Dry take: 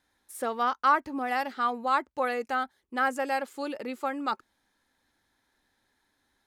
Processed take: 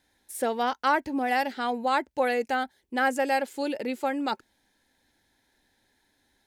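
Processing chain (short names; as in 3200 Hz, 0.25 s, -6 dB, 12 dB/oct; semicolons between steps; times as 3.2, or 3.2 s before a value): bell 1200 Hz -14 dB 0.36 oct; gain +5 dB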